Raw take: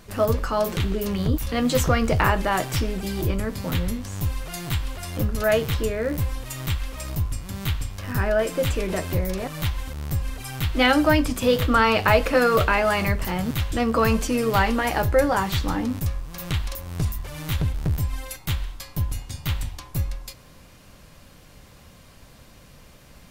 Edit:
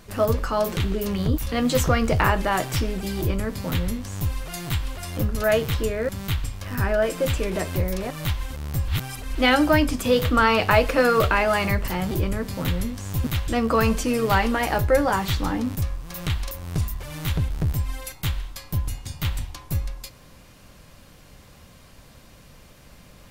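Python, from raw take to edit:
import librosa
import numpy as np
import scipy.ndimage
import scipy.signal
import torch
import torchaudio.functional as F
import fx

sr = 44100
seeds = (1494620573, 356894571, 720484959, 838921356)

y = fx.edit(x, sr, fx.duplicate(start_s=3.18, length_s=1.13, to_s=13.48),
    fx.cut(start_s=6.09, length_s=1.37),
    fx.reverse_span(start_s=10.25, length_s=0.47), tone=tone)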